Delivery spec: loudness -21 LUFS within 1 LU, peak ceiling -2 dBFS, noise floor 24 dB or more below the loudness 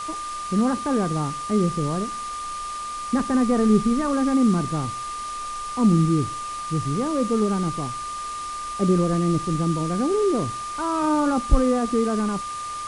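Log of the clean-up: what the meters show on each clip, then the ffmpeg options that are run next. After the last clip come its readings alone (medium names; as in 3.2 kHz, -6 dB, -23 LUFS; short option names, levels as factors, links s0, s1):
steady tone 1.2 kHz; tone level -29 dBFS; noise floor -32 dBFS; noise floor target -48 dBFS; loudness -23.5 LUFS; peak level -4.0 dBFS; loudness target -21.0 LUFS
-> -af "bandreject=f=1200:w=30"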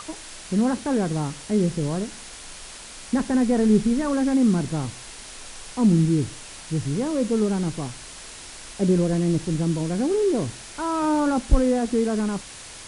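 steady tone not found; noise floor -41 dBFS; noise floor target -47 dBFS
-> -af "afftdn=nr=6:nf=-41"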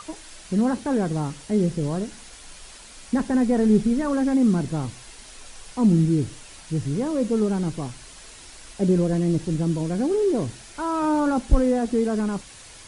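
noise floor -45 dBFS; noise floor target -47 dBFS
-> -af "afftdn=nr=6:nf=-45"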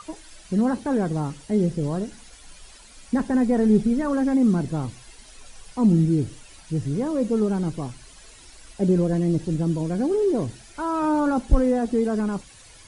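noise floor -48 dBFS; loudness -23.0 LUFS; peak level -4.5 dBFS; loudness target -21.0 LUFS
-> -af "volume=1.26"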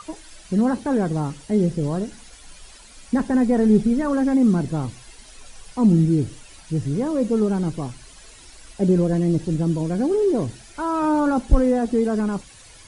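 loudness -21.0 LUFS; peak level -2.5 dBFS; noise floor -46 dBFS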